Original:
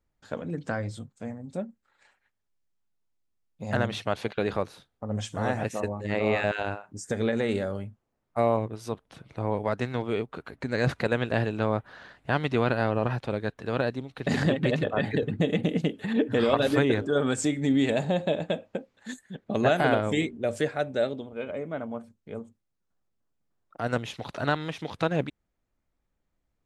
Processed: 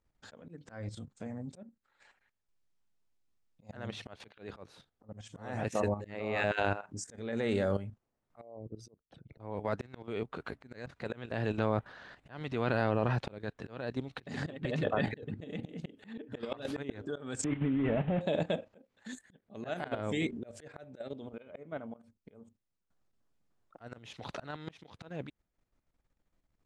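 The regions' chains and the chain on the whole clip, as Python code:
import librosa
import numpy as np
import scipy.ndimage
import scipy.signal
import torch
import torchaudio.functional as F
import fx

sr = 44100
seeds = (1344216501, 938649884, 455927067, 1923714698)

y = fx.chain(x, sr, fx.envelope_sharpen(power=2.0),
    fx.peak_eq(hz=1100.0, db=-6.0, octaves=0.75),
    fx.level_steps(step_db=18), at=(8.41, 9.4))
y = fx.chain(y, sr, fx.delta_mod(bps=16000, step_db=-34.5),
    fx.level_steps(step_db=10),
    fx.low_shelf(hz=230.0, db=6.5), at=(17.44, 18.21))
y = scipy.signal.sosfilt(scipy.signal.butter(2, 8700.0, 'lowpass', fs=sr, output='sos'), y)
y = fx.level_steps(y, sr, step_db=11)
y = fx.auto_swell(y, sr, attack_ms=418.0)
y = y * 10.0 ** (3.5 / 20.0)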